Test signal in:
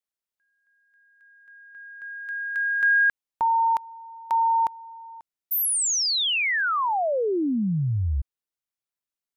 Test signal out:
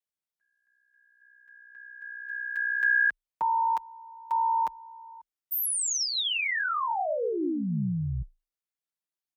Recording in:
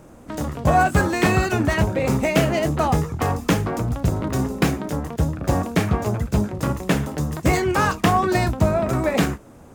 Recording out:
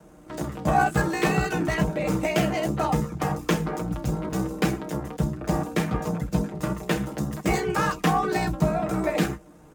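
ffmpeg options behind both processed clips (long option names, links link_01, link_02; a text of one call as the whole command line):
ffmpeg -i in.wav -af "aeval=exprs='val(0)*sin(2*PI*31*n/s)':channel_layout=same,aecho=1:1:6.8:0.82,afreqshift=27,volume=-4dB" out.wav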